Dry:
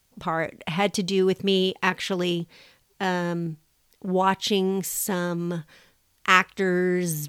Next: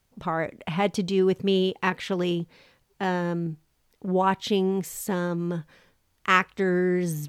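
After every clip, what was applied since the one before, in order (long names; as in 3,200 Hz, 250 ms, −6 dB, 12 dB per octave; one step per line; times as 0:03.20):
high-shelf EQ 2,400 Hz −8.5 dB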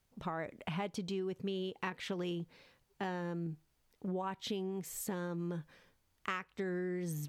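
downward compressor 10 to 1, threshold −28 dBFS, peak gain reduction 14.5 dB
level −6.5 dB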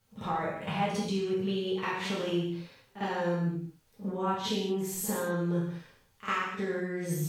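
backwards echo 52 ms −12.5 dB
reverb whose tail is shaped and stops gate 260 ms falling, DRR −7 dB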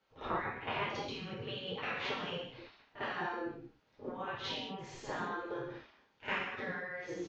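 downsampling to 16,000 Hz
high-frequency loss of the air 230 metres
gate on every frequency bin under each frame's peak −10 dB weak
level +2.5 dB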